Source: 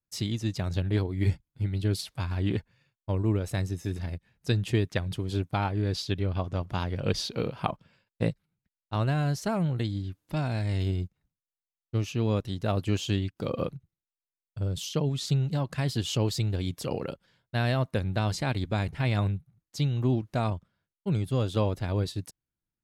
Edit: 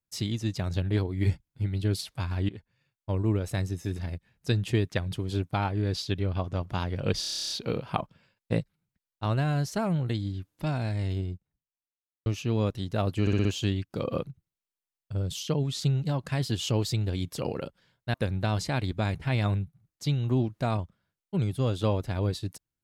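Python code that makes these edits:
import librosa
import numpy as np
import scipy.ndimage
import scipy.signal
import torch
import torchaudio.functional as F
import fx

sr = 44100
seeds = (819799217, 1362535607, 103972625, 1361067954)

y = fx.studio_fade_out(x, sr, start_s=10.34, length_s=1.62)
y = fx.edit(y, sr, fx.fade_in_from(start_s=2.49, length_s=0.67, floor_db=-19.5),
    fx.stutter(start_s=7.2, slice_s=0.03, count=11),
    fx.stutter(start_s=12.91, slice_s=0.06, count=5),
    fx.cut(start_s=17.6, length_s=0.27), tone=tone)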